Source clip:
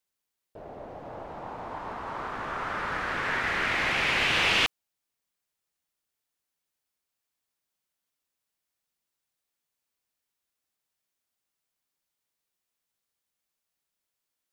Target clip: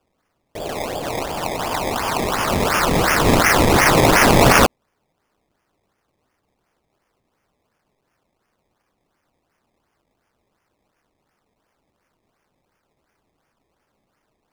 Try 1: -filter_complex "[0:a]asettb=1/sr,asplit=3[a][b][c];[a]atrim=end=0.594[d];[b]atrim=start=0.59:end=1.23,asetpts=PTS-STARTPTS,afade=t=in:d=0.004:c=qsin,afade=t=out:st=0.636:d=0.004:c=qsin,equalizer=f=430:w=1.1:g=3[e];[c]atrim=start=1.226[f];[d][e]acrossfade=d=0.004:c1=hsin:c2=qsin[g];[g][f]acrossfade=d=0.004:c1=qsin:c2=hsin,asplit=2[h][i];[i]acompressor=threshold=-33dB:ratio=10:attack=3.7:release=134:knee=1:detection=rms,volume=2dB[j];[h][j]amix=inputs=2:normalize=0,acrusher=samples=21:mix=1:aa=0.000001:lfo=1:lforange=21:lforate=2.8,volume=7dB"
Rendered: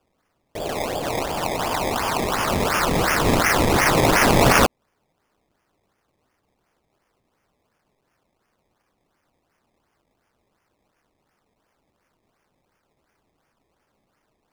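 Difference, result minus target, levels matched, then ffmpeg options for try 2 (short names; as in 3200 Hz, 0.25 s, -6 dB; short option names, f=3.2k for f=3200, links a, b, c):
compressor: peak gain reduction +10 dB
-filter_complex "[0:a]asettb=1/sr,asplit=3[a][b][c];[a]atrim=end=0.594[d];[b]atrim=start=0.59:end=1.23,asetpts=PTS-STARTPTS,afade=t=in:d=0.004:c=qsin,afade=t=out:st=0.636:d=0.004:c=qsin,equalizer=f=430:w=1.1:g=3[e];[c]atrim=start=1.226[f];[d][e]acrossfade=d=0.004:c1=hsin:c2=qsin[g];[g][f]acrossfade=d=0.004:c1=qsin:c2=hsin,asplit=2[h][i];[i]acompressor=threshold=-22dB:ratio=10:attack=3.7:release=134:knee=1:detection=rms,volume=2dB[j];[h][j]amix=inputs=2:normalize=0,acrusher=samples=21:mix=1:aa=0.000001:lfo=1:lforange=21:lforate=2.8,volume=7dB"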